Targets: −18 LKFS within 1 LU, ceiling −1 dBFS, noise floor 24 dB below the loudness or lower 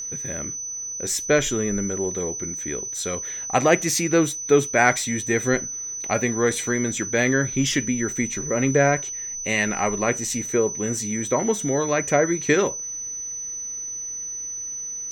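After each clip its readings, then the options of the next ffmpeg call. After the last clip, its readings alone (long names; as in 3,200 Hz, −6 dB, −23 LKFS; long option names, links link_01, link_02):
interfering tone 6,000 Hz; level of the tone −29 dBFS; integrated loudness −23.0 LKFS; sample peak −2.0 dBFS; target loudness −18.0 LKFS
→ -af "bandreject=frequency=6000:width=30"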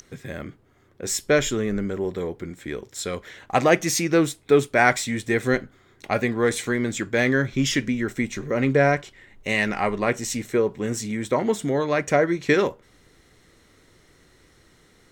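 interfering tone none found; integrated loudness −23.0 LKFS; sample peak −2.5 dBFS; target loudness −18.0 LKFS
→ -af "volume=5dB,alimiter=limit=-1dB:level=0:latency=1"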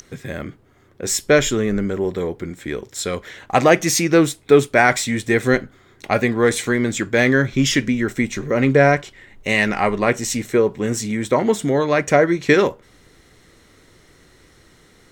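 integrated loudness −18.0 LKFS; sample peak −1.0 dBFS; background noise floor −53 dBFS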